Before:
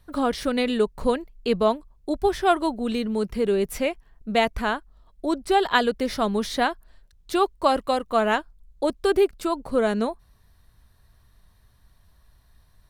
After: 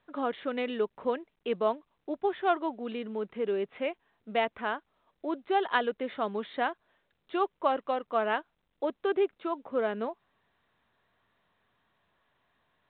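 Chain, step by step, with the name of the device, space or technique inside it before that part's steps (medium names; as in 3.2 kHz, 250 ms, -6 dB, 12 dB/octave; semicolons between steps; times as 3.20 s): telephone (band-pass 290–3300 Hz; trim -6.5 dB; µ-law 64 kbps 8 kHz)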